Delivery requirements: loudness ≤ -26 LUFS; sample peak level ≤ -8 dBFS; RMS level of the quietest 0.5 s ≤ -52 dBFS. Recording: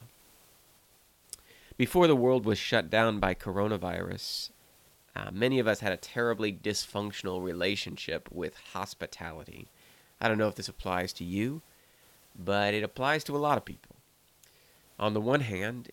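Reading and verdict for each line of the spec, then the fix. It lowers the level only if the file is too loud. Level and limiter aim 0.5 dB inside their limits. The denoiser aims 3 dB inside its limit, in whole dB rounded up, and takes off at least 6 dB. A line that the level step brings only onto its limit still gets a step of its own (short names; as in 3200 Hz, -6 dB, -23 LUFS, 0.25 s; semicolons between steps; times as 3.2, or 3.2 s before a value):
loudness -30.5 LUFS: OK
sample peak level -9.0 dBFS: OK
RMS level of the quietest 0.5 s -64 dBFS: OK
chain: none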